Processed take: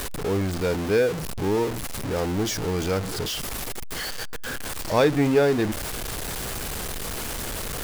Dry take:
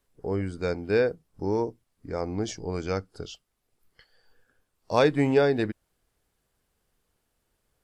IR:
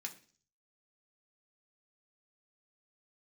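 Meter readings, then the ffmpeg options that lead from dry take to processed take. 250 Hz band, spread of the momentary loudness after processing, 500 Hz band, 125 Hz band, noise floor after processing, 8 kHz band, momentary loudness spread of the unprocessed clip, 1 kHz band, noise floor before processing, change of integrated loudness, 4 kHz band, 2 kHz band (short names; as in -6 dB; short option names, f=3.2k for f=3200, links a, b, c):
+4.0 dB, 11 LU, +2.5 dB, +5.0 dB, -31 dBFS, +16.5 dB, 14 LU, +3.5 dB, -77 dBFS, +1.5 dB, +10.0 dB, +5.0 dB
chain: -af "aeval=exprs='val(0)+0.5*0.0596*sgn(val(0))':c=same"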